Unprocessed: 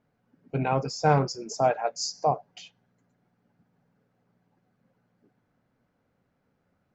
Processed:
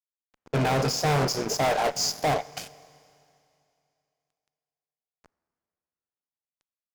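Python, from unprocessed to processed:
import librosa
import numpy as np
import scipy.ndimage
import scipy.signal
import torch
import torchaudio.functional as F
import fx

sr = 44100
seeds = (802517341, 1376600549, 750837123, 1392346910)

y = fx.bin_compress(x, sr, power=0.6)
y = fx.fuzz(y, sr, gain_db=29.0, gate_db=-38.0)
y = fx.rev_schroeder(y, sr, rt60_s=2.6, comb_ms=27, drr_db=18.5)
y = y * librosa.db_to_amplitude(-7.5)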